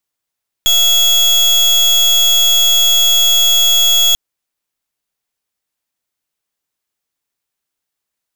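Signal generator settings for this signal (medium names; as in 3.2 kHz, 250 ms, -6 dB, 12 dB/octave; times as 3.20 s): pulse 3.34 kHz, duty 33% -10.5 dBFS 3.49 s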